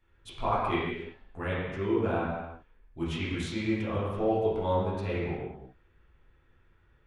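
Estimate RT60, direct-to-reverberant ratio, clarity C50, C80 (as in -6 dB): not exponential, -9.5 dB, -1.0 dB, 1.5 dB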